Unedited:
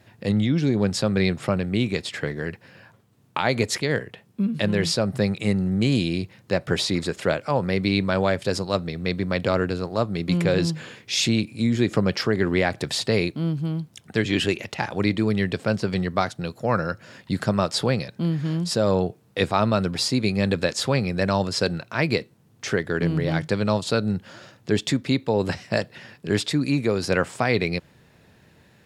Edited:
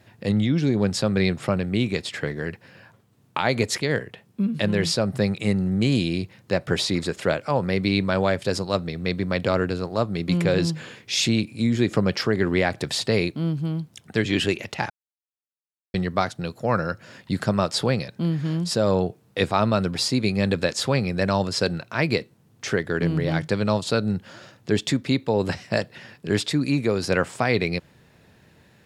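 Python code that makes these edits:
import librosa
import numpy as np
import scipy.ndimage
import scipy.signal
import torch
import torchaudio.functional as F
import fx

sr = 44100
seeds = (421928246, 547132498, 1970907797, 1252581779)

y = fx.edit(x, sr, fx.silence(start_s=14.9, length_s=1.04), tone=tone)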